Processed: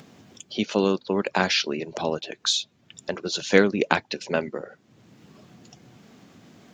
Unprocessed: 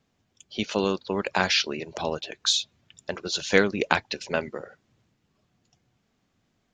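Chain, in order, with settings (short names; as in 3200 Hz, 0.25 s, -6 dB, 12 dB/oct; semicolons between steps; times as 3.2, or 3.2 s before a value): HPF 180 Hz 12 dB/oct; low shelf 390 Hz +8.5 dB; in parallel at +2 dB: upward compressor, threshold -26 dBFS; on the sum: gain -7.5 dB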